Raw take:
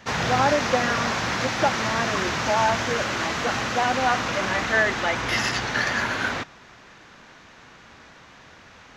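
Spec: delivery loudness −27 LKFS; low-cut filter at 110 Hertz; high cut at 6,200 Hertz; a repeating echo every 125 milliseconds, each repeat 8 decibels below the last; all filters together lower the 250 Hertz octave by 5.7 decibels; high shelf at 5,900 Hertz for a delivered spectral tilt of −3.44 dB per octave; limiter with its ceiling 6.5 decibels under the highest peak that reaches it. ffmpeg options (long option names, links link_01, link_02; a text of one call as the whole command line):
ffmpeg -i in.wav -af "highpass=110,lowpass=6200,equalizer=frequency=250:width_type=o:gain=-7,highshelf=frequency=5900:gain=-6,alimiter=limit=-15.5dB:level=0:latency=1,aecho=1:1:125|250|375|500|625:0.398|0.159|0.0637|0.0255|0.0102,volume=-2.5dB" out.wav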